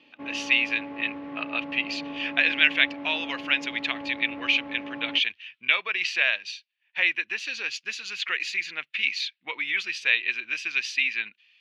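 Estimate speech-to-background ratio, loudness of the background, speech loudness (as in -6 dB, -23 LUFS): 12.5 dB, -38.0 LUFS, -25.5 LUFS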